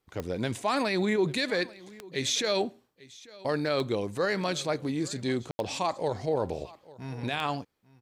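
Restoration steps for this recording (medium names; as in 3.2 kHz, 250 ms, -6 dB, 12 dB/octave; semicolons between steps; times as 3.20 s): de-click; room tone fill 5.51–5.59 s; inverse comb 844 ms -21.5 dB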